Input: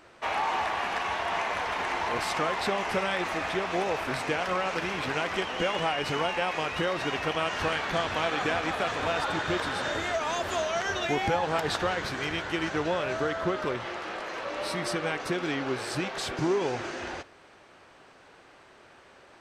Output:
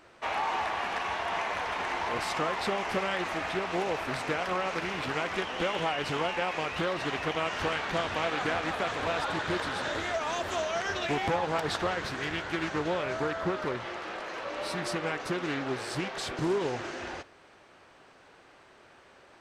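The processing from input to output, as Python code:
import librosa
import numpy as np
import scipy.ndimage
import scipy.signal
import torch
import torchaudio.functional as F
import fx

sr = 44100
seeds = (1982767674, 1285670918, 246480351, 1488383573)

y = fx.doppler_dist(x, sr, depth_ms=0.59)
y = F.gain(torch.from_numpy(y), -2.0).numpy()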